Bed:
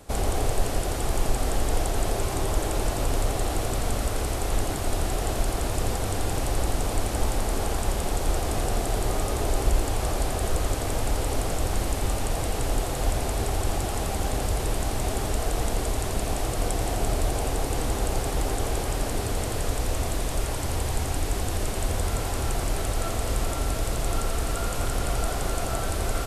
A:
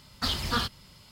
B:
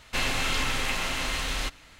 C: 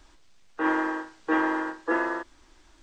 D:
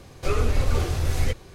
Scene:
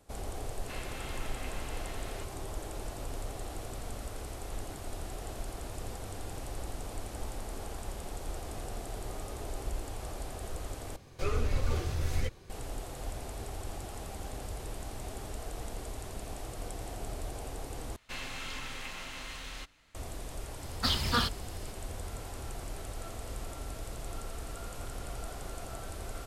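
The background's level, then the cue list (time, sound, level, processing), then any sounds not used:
bed -14 dB
0.55 add B -14 dB + high shelf 3300 Hz -10 dB
10.96 replace with D -8 dB
17.96 replace with B -13 dB
20.61 add A -0.5 dB
not used: C

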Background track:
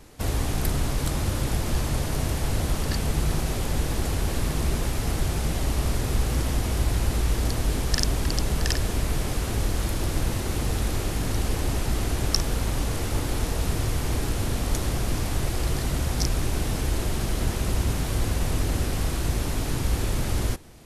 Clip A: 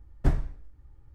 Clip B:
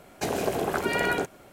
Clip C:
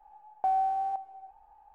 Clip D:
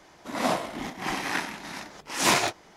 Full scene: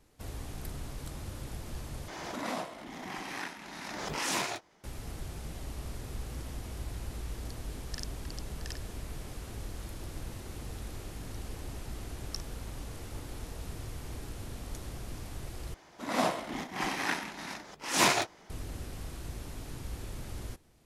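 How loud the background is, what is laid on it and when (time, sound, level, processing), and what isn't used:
background track -15.5 dB
2.08 replace with D -11.5 dB + backwards sustainer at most 23 dB/s
15.74 replace with D -3 dB
not used: A, B, C

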